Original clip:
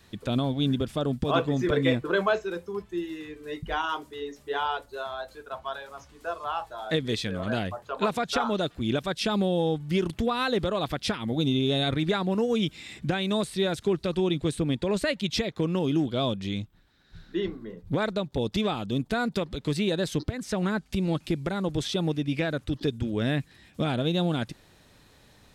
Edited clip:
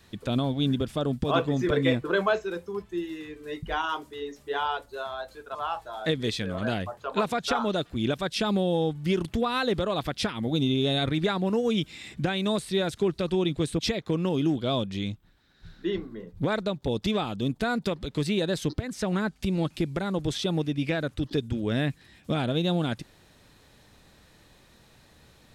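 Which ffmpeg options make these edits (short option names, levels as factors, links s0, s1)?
-filter_complex "[0:a]asplit=3[s0][s1][s2];[s0]atrim=end=5.552[s3];[s1]atrim=start=6.398:end=14.642[s4];[s2]atrim=start=15.288[s5];[s3][s4]acrossfade=d=0.004:c1=hsin:c2=hsin[s6];[s6][s5]acrossfade=d=0.004:c1=hsin:c2=hsin"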